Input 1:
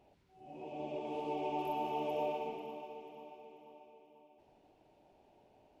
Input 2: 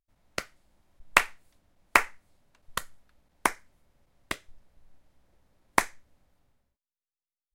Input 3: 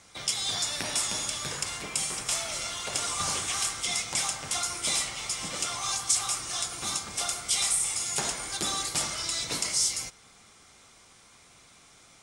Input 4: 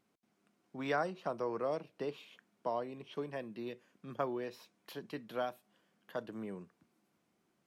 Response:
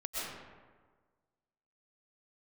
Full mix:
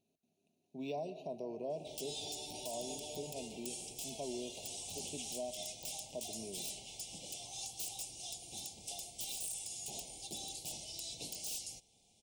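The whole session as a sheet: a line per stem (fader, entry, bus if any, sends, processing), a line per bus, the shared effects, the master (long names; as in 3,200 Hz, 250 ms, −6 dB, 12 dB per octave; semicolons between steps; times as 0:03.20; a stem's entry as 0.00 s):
−12.5 dB, 0.95 s, no send, no processing
muted
−12.5 dB, 1.70 s, no send, wrap-around overflow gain 19 dB
−4.5 dB, 0.00 s, send −17.5 dB, EQ curve with evenly spaced ripples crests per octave 1.5, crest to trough 9 dB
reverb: on, RT60 1.5 s, pre-delay 85 ms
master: Chebyshev band-stop filter 780–2,700 Hz, order 3; brickwall limiter −32 dBFS, peak gain reduction 8 dB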